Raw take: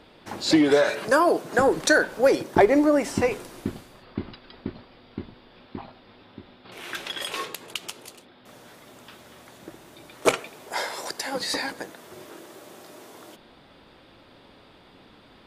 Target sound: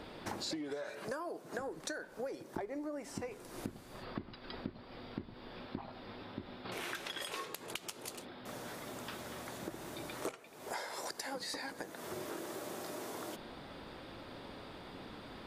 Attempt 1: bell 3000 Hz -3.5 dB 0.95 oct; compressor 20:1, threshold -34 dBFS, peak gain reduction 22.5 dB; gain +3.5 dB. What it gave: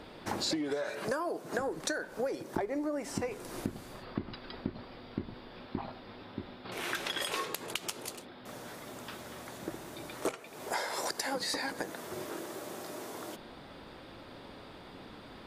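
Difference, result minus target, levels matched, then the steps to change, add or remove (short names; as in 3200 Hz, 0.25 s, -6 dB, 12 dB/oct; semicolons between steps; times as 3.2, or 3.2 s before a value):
compressor: peak gain reduction -7 dB
change: compressor 20:1, threshold -41.5 dBFS, peak gain reduction 30 dB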